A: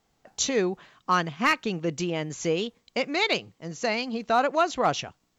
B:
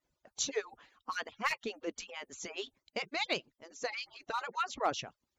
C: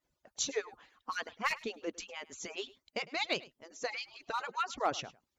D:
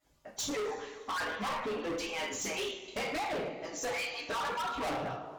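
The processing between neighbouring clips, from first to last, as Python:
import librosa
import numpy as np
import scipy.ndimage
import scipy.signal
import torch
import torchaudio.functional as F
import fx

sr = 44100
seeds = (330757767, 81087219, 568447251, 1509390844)

y1 = fx.hpss_only(x, sr, part='percussive')
y1 = F.gain(torch.from_numpy(y1), -7.5).numpy()
y2 = y1 + 10.0 ** (-20.5 / 20.0) * np.pad(y1, (int(104 * sr / 1000.0), 0))[:len(y1)]
y3 = fx.env_lowpass_down(y2, sr, base_hz=910.0, full_db=-30.5)
y3 = fx.rev_double_slope(y3, sr, seeds[0], early_s=0.4, late_s=2.2, knee_db=-20, drr_db=-7.5)
y3 = np.clip(y3, -10.0 ** (-36.0 / 20.0), 10.0 ** (-36.0 / 20.0))
y3 = F.gain(torch.from_numpy(y3), 3.5).numpy()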